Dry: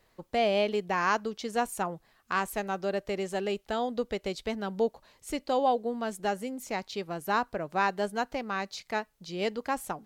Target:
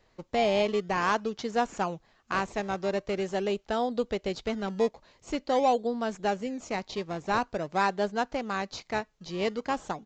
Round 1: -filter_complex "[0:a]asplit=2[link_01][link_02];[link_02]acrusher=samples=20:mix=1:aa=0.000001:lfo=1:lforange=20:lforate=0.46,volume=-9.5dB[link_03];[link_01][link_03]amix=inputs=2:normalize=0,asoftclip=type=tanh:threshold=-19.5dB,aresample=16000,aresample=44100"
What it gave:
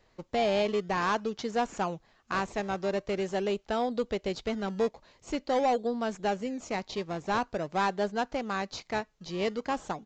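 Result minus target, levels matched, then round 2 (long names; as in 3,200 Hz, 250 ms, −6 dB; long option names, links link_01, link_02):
soft clipping: distortion +14 dB
-filter_complex "[0:a]asplit=2[link_01][link_02];[link_02]acrusher=samples=20:mix=1:aa=0.000001:lfo=1:lforange=20:lforate=0.46,volume=-9.5dB[link_03];[link_01][link_03]amix=inputs=2:normalize=0,asoftclip=type=tanh:threshold=-10.5dB,aresample=16000,aresample=44100"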